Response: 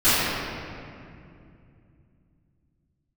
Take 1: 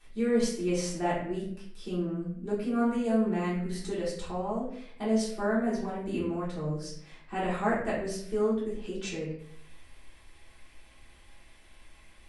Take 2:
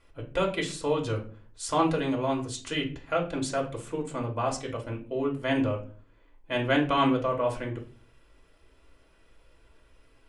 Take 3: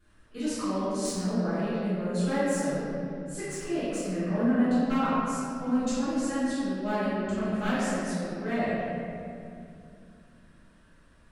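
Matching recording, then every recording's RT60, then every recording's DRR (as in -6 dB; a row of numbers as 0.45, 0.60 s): 3; 0.60, 0.40, 2.5 s; -10.0, -0.5, -19.5 dB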